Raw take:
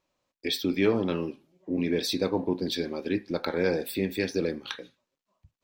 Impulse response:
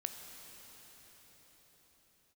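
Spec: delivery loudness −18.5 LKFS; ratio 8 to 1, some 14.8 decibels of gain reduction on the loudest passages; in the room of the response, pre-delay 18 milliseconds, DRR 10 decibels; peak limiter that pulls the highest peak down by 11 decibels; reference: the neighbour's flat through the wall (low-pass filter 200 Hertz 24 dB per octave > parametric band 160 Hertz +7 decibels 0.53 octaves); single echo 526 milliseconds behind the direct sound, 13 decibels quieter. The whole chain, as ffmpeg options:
-filter_complex "[0:a]acompressor=threshold=-34dB:ratio=8,alimiter=level_in=4.5dB:limit=-24dB:level=0:latency=1,volume=-4.5dB,aecho=1:1:526:0.224,asplit=2[link_01][link_02];[1:a]atrim=start_sample=2205,adelay=18[link_03];[link_02][link_03]afir=irnorm=-1:irlink=0,volume=-9.5dB[link_04];[link_01][link_04]amix=inputs=2:normalize=0,lowpass=frequency=200:width=0.5412,lowpass=frequency=200:width=1.3066,equalizer=frequency=160:width_type=o:width=0.53:gain=7,volume=28dB"

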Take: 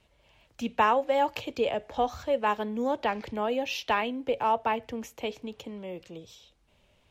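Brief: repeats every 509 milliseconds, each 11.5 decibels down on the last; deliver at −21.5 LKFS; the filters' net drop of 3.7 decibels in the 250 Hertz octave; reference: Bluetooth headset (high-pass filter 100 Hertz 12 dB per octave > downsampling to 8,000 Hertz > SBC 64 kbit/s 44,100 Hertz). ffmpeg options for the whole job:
ffmpeg -i in.wav -af "highpass=100,equalizer=frequency=250:width_type=o:gain=-4,aecho=1:1:509|1018|1527:0.266|0.0718|0.0194,aresample=8000,aresample=44100,volume=7.5dB" -ar 44100 -c:a sbc -b:a 64k out.sbc

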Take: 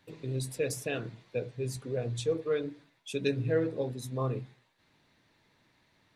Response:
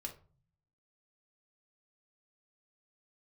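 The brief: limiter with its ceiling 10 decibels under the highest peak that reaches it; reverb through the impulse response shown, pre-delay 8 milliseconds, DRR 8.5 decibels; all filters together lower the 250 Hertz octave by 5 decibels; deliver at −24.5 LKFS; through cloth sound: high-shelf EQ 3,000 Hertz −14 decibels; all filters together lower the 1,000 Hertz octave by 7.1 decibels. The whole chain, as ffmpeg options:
-filter_complex "[0:a]equalizer=frequency=250:width_type=o:gain=-6.5,equalizer=frequency=1000:width_type=o:gain=-7,alimiter=level_in=4.5dB:limit=-24dB:level=0:latency=1,volume=-4.5dB,asplit=2[link_01][link_02];[1:a]atrim=start_sample=2205,adelay=8[link_03];[link_02][link_03]afir=irnorm=-1:irlink=0,volume=-6.5dB[link_04];[link_01][link_04]amix=inputs=2:normalize=0,highshelf=frequency=3000:gain=-14,volume=14.5dB"

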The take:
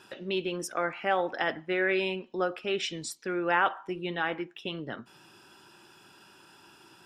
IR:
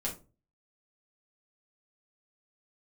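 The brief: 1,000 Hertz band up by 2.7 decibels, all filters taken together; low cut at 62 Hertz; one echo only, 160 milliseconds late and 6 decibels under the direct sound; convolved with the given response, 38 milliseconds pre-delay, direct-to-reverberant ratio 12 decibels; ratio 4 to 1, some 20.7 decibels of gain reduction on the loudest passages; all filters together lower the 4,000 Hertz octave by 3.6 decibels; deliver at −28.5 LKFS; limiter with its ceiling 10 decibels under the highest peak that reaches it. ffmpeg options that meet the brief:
-filter_complex "[0:a]highpass=62,equalizer=frequency=1000:width_type=o:gain=4,equalizer=frequency=4000:width_type=o:gain=-6,acompressor=threshold=-44dB:ratio=4,alimiter=level_in=12dB:limit=-24dB:level=0:latency=1,volume=-12dB,aecho=1:1:160:0.501,asplit=2[link_01][link_02];[1:a]atrim=start_sample=2205,adelay=38[link_03];[link_02][link_03]afir=irnorm=-1:irlink=0,volume=-15dB[link_04];[link_01][link_04]amix=inputs=2:normalize=0,volume=18.5dB"

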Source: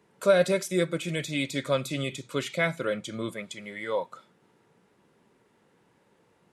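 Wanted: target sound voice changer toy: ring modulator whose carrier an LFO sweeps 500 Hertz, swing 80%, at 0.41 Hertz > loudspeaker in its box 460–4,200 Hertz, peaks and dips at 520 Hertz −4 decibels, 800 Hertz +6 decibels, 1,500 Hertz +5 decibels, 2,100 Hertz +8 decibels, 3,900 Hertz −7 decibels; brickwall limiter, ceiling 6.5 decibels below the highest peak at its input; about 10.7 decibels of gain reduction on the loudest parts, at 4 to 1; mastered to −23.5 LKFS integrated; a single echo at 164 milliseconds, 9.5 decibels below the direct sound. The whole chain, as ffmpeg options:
ffmpeg -i in.wav -af "acompressor=threshold=-29dB:ratio=4,alimiter=level_in=1.5dB:limit=-24dB:level=0:latency=1,volume=-1.5dB,aecho=1:1:164:0.335,aeval=exprs='val(0)*sin(2*PI*500*n/s+500*0.8/0.41*sin(2*PI*0.41*n/s))':channel_layout=same,highpass=460,equalizer=frequency=520:width_type=q:width=4:gain=-4,equalizer=frequency=800:width_type=q:width=4:gain=6,equalizer=frequency=1500:width_type=q:width=4:gain=5,equalizer=frequency=2100:width_type=q:width=4:gain=8,equalizer=frequency=3900:width_type=q:width=4:gain=-7,lowpass=frequency=4200:width=0.5412,lowpass=frequency=4200:width=1.3066,volume=14.5dB" out.wav

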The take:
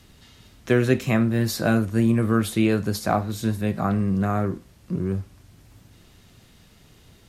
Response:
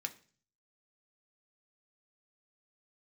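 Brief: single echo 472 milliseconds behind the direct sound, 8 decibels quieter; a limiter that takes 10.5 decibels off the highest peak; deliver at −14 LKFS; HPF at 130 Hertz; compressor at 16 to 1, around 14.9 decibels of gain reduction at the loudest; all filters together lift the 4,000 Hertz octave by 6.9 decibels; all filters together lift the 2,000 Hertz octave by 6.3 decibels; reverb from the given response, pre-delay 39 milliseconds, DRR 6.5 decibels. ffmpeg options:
-filter_complex "[0:a]highpass=130,equalizer=frequency=2000:width_type=o:gain=7,equalizer=frequency=4000:width_type=o:gain=6.5,acompressor=threshold=-29dB:ratio=16,alimiter=level_in=3.5dB:limit=-24dB:level=0:latency=1,volume=-3.5dB,aecho=1:1:472:0.398,asplit=2[link_01][link_02];[1:a]atrim=start_sample=2205,adelay=39[link_03];[link_02][link_03]afir=irnorm=-1:irlink=0,volume=-6dB[link_04];[link_01][link_04]amix=inputs=2:normalize=0,volume=22.5dB"

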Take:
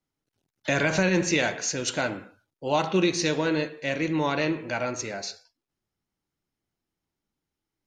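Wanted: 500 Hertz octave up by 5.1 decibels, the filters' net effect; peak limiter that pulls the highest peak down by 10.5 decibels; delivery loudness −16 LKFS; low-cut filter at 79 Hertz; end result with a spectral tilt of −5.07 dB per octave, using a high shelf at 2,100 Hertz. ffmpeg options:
ffmpeg -i in.wav -af "highpass=79,equalizer=frequency=500:width_type=o:gain=7,highshelf=frequency=2100:gain=-8,volume=13.5dB,alimiter=limit=-6dB:level=0:latency=1" out.wav

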